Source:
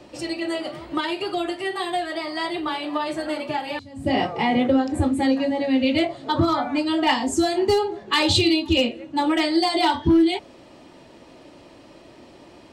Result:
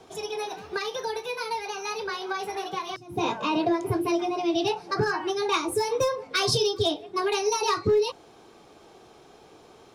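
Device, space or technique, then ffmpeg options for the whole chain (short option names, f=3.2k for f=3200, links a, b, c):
nightcore: -af "asetrate=56448,aresample=44100,volume=-5dB"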